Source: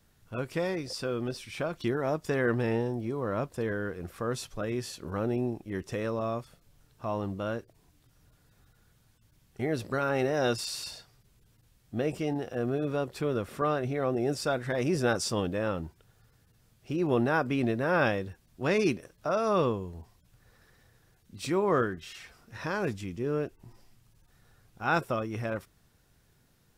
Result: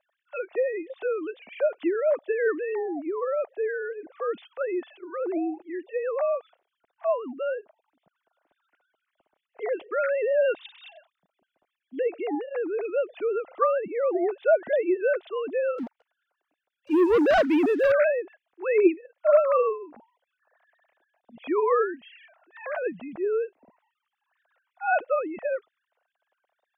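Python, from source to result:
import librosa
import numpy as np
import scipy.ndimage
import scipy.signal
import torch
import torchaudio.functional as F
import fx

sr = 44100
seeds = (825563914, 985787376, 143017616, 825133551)

y = fx.sine_speech(x, sr)
y = fx.peak_eq(y, sr, hz=670.0, db=10.5, octaves=0.66)
y = fx.leveller(y, sr, passes=2, at=(15.78, 17.92))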